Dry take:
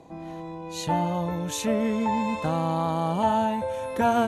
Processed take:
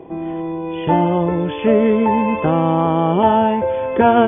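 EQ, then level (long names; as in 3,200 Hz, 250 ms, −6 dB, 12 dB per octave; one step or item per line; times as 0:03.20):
linear-phase brick-wall low-pass 3,500 Hz
parametric band 380 Hz +13.5 dB 0.44 octaves
+8.0 dB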